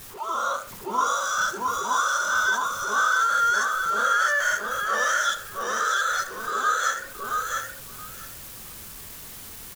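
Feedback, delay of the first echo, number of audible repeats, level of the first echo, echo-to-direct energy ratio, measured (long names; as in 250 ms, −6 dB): 15%, 672 ms, 2, −3.0 dB, −3.0 dB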